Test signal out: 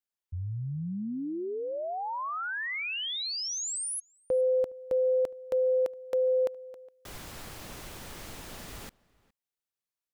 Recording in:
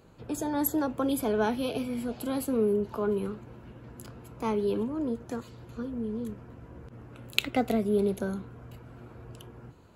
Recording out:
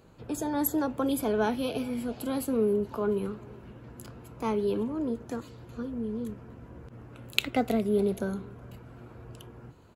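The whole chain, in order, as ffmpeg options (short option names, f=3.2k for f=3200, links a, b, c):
-filter_complex "[0:a]asplit=2[a][b];[b]adelay=414,volume=-24dB,highshelf=f=4k:g=-9.32[c];[a][c]amix=inputs=2:normalize=0"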